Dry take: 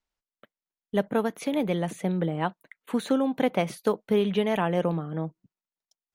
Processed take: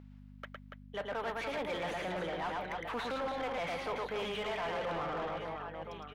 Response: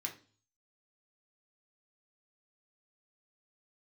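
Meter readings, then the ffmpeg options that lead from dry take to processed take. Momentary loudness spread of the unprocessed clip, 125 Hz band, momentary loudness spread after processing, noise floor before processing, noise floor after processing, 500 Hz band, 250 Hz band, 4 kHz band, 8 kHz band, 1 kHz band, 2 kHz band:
7 LU, −16.0 dB, 10 LU, below −85 dBFS, −53 dBFS, −9.5 dB, −17.5 dB, −3.0 dB, −10.5 dB, −4.0 dB, −2.0 dB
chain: -filter_complex "[0:a]aemphasis=mode=production:type=75fm,acrossover=split=6100[link_01][link_02];[link_02]acompressor=threshold=-41dB:ratio=4:attack=1:release=60[link_03];[link_01][link_03]amix=inputs=2:normalize=0,acrossover=split=560 3500:gain=0.2 1 0.1[link_04][link_05][link_06];[link_04][link_05][link_06]amix=inputs=3:normalize=0,areverse,acompressor=threshold=-40dB:ratio=6,areverse,aecho=1:1:110|286|567.6|1018|1739:0.631|0.398|0.251|0.158|0.1,aeval=exprs='val(0)+0.002*(sin(2*PI*50*n/s)+sin(2*PI*2*50*n/s)/2+sin(2*PI*3*50*n/s)/3+sin(2*PI*4*50*n/s)/4+sin(2*PI*5*50*n/s)/5)':channel_layout=same,acrossover=split=5500[link_07][link_08];[link_07]asoftclip=type=tanh:threshold=-36dB[link_09];[link_09][link_08]amix=inputs=2:normalize=0,asplit=2[link_10][link_11];[link_11]highpass=frequency=720:poles=1,volume=18dB,asoftclip=type=tanh:threshold=-34.5dB[link_12];[link_10][link_12]amix=inputs=2:normalize=0,lowpass=frequency=2000:poles=1,volume=-6dB,volume=5dB"

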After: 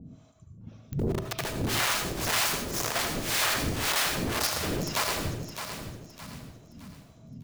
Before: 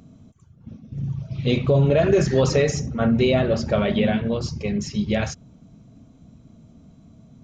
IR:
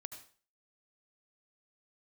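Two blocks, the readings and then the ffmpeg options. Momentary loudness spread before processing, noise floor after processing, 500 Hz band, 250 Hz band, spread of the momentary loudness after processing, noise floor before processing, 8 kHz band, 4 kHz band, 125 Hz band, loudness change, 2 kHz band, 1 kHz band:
12 LU, −54 dBFS, −14.5 dB, −12.5 dB, 18 LU, −52 dBFS, can't be measured, +3.5 dB, −12.0 dB, −6.5 dB, +1.5 dB, +0.5 dB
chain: -filter_complex "[0:a]aeval=exprs='(mod(15*val(0)+1,2)-1)/15':channel_layout=same,acrossover=split=530[link_01][link_02];[link_01]aeval=exprs='val(0)*(1-1/2+1/2*cos(2*PI*1.9*n/s))':channel_layout=same[link_03];[link_02]aeval=exprs='val(0)*(1-1/2-1/2*cos(2*PI*1.9*n/s))':channel_layout=same[link_04];[link_03][link_04]amix=inputs=2:normalize=0,aecho=1:1:614|1228|1842|2456:0.355|0.131|0.0486|0.018[link_05];[1:a]atrim=start_sample=2205[link_06];[link_05][link_06]afir=irnorm=-1:irlink=0,volume=8dB"

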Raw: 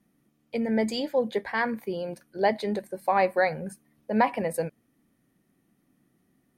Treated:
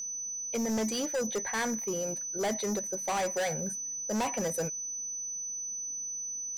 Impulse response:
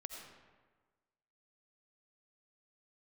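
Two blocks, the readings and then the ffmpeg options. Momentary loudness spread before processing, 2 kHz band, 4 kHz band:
12 LU, −6.5 dB, −0.5 dB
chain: -af "aeval=exprs='val(0)+0.0224*sin(2*PI*6000*n/s)':channel_layout=same,acontrast=27,asoftclip=type=hard:threshold=-21dB,volume=-6.5dB"

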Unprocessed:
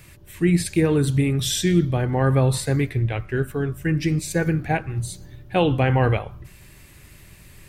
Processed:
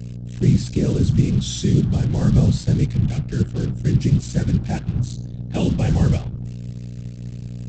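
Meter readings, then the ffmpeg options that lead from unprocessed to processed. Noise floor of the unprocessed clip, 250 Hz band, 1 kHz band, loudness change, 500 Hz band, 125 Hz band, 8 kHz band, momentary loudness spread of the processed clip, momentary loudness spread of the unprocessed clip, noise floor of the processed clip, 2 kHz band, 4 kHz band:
−48 dBFS, +2.0 dB, −10.0 dB, +1.5 dB, −6.0 dB, +4.0 dB, −4.0 dB, 15 LU, 7 LU, −33 dBFS, −10.0 dB, −3.0 dB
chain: -af "afftfilt=real='hypot(re,im)*cos(2*PI*random(0))':imag='hypot(re,im)*sin(2*PI*random(1))':win_size=512:overlap=0.75,aeval=exprs='val(0)+0.0112*(sin(2*PI*60*n/s)+sin(2*PI*2*60*n/s)/2+sin(2*PI*3*60*n/s)/3+sin(2*PI*4*60*n/s)/4+sin(2*PI*5*60*n/s)/5)':channel_layout=same,aresample=16000,acrusher=bits=5:mix=0:aa=0.5,aresample=44100,equalizer=frequency=125:width_type=o:width=1:gain=10,equalizer=frequency=500:width_type=o:width=1:gain=-5,equalizer=frequency=1000:width_type=o:width=1:gain=-8,equalizer=frequency=2000:width_type=o:width=1:gain=-9,volume=4.5dB"

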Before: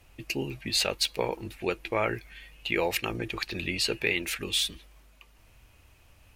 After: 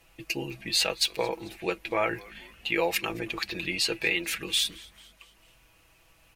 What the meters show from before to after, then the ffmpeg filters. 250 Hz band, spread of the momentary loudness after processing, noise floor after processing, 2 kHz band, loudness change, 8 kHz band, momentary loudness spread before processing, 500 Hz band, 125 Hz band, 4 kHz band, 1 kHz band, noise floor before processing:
−0.5 dB, 9 LU, −61 dBFS, +1.5 dB, +1.0 dB, +1.5 dB, 7 LU, 0.0 dB, −4.5 dB, +1.5 dB, +1.0 dB, −59 dBFS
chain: -filter_complex "[0:a]lowshelf=frequency=240:gain=-7.5,aecho=1:1:6.1:0.57,asplit=5[link_01][link_02][link_03][link_04][link_05];[link_02]adelay=222,afreqshift=-140,volume=-23dB[link_06];[link_03]adelay=444,afreqshift=-280,volume=-28.2dB[link_07];[link_04]adelay=666,afreqshift=-420,volume=-33.4dB[link_08];[link_05]adelay=888,afreqshift=-560,volume=-38.6dB[link_09];[link_01][link_06][link_07][link_08][link_09]amix=inputs=5:normalize=0"

